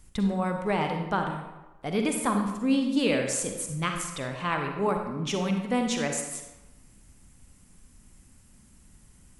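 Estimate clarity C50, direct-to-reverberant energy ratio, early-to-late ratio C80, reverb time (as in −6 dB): 4.5 dB, 3.5 dB, 6.5 dB, 1.1 s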